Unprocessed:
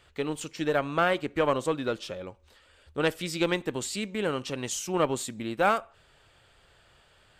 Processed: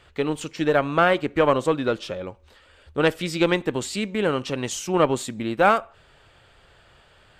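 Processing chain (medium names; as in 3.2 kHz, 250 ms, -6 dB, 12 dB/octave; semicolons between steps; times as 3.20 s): treble shelf 5 kHz -7.5 dB; trim +6.5 dB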